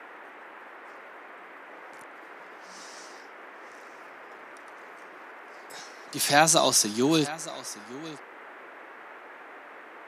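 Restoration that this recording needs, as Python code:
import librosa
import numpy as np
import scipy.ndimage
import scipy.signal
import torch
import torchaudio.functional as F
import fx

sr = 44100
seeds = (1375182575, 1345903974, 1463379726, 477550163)

y = fx.noise_reduce(x, sr, print_start_s=9.56, print_end_s=10.06, reduce_db=26.0)
y = fx.fix_echo_inverse(y, sr, delay_ms=914, level_db=-17.0)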